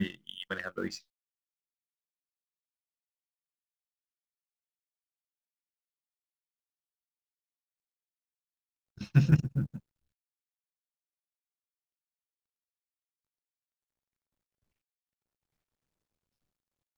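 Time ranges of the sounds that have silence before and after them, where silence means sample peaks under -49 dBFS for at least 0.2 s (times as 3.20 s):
8.98–9.79 s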